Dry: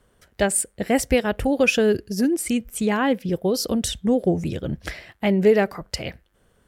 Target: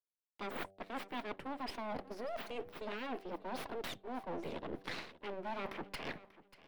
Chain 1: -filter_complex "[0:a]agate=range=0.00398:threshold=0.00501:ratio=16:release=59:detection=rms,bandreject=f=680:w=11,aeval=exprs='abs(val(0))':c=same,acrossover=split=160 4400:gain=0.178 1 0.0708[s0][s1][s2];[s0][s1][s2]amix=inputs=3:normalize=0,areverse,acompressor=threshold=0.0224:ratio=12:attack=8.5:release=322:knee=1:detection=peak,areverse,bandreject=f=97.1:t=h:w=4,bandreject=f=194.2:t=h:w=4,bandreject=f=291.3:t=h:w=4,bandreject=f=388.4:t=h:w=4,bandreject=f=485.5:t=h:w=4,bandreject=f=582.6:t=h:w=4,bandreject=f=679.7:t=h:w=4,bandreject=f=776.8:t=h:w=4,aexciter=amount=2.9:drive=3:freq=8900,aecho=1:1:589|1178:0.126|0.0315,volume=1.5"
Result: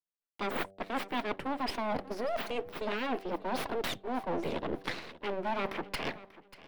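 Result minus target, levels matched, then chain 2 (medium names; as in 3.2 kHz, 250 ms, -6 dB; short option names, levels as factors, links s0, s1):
compression: peak gain reduction -8.5 dB
-filter_complex "[0:a]agate=range=0.00398:threshold=0.00501:ratio=16:release=59:detection=rms,bandreject=f=680:w=11,aeval=exprs='abs(val(0))':c=same,acrossover=split=160 4400:gain=0.178 1 0.0708[s0][s1][s2];[s0][s1][s2]amix=inputs=3:normalize=0,areverse,acompressor=threshold=0.00794:ratio=12:attack=8.5:release=322:knee=1:detection=peak,areverse,bandreject=f=97.1:t=h:w=4,bandreject=f=194.2:t=h:w=4,bandreject=f=291.3:t=h:w=4,bandreject=f=388.4:t=h:w=4,bandreject=f=485.5:t=h:w=4,bandreject=f=582.6:t=h:w=4,bandreject=f=679.7:t=h:w=4,bandreject=f=776.8:t=h:w=4,aexciter=amount=2.9:drive=3:freq=8900,aecho=1:1:589|1178:0.126|0.0315,volume=1.5"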